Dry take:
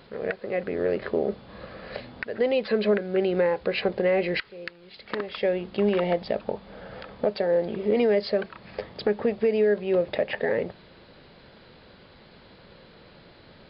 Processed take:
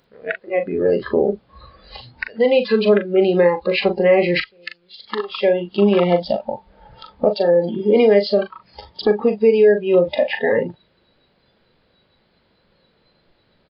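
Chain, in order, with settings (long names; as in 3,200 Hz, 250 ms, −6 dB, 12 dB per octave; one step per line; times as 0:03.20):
double-tracking delay 40 ms −8 dB
noise reduction from a noise print of the clip's start 19 dB
level +8 dB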